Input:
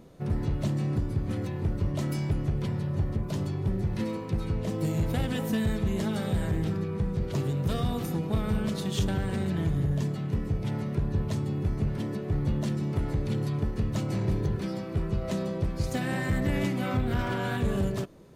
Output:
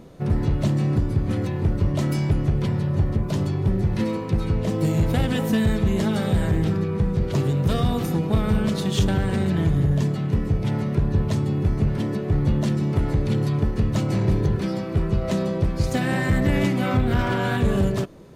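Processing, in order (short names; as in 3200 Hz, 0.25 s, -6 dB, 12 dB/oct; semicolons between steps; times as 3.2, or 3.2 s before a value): high shelf 8000 Hz -4 dB; gain +7 dB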